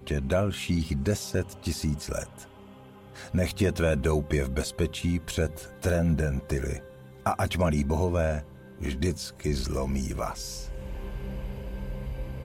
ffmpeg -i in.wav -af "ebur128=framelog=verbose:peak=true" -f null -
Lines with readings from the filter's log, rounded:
Integrated loudness:
  I:         -29.5 LUFS
  Threshold: -39.9 LUFS
Loudness range:
  LRA:         4.8 LU
  Threshold: -49.6 LUFS
  LRA low:   -32.8 LUFS
  LRA high:  -28.0 LUFS
True peak:
  Peak:      -13.2 dBFS